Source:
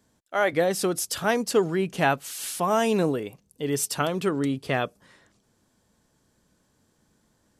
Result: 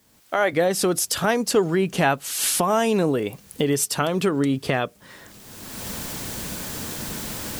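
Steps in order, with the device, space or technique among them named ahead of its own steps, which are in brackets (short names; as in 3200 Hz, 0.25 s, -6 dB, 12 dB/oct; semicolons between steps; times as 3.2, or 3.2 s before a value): cheap recorder with automatic gain (white noise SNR 39 dB; recorder AGC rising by 29 dB/s); gain +2 dB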